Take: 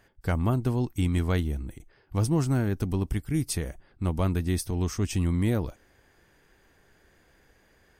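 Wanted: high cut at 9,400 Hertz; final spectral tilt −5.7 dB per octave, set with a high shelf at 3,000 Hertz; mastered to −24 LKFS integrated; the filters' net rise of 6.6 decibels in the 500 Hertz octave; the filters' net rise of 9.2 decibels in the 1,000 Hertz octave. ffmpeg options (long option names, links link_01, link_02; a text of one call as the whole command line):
ffmpeg -i in.wav -af "lowpass=9400,equalizer=frequency=500:width_type=o:gain=6.5,equalizer=frequency=1000:width_type=o:gain=8.5,highshelf=frequency=3000:gain=8.5,volume=2dB" out.wav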